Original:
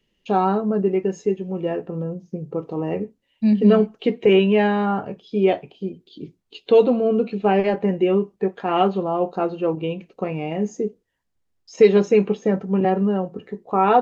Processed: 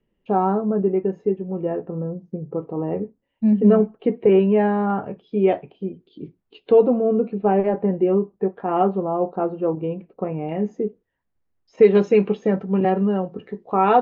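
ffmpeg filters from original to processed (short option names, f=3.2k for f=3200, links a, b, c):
-af "asetnsamples=n=441:p=0,asendcmd='4.9 lowpass f 2000;6.72 lowpass f 1200;10.49 lowpass f 2100;11.95 lowpass f 4100',lowpass=1.3k"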